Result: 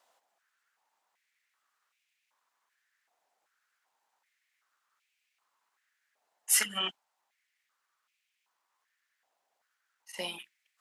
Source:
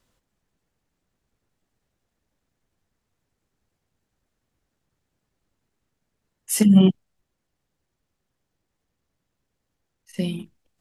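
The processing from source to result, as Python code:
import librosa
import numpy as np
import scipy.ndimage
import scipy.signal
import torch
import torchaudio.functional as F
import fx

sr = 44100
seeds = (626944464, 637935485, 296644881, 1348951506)

y = fx.filter_held_highpass(x, sr, hz=2.6, low_hz=740.0, high_hz=2400.0)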